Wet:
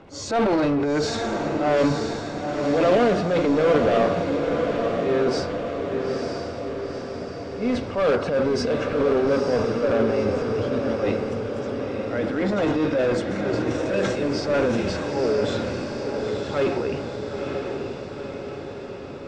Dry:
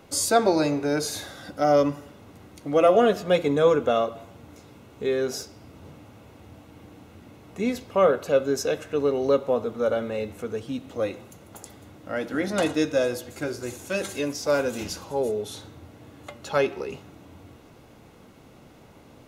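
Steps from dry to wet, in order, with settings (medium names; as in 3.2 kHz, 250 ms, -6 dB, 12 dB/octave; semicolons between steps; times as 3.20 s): knee-point frequency compression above 4 kHz 1.5:1; treble shelf 3.9 kHz -11.5 dB; transient shaper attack -8 dB, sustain +8 dB; in parallel at -3 dB: wavefolder -23.5 dBFS; on the sum: distance through air 68 m; on a send: echo that smears into a reverb 934 ms, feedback 61%, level -4.5 dB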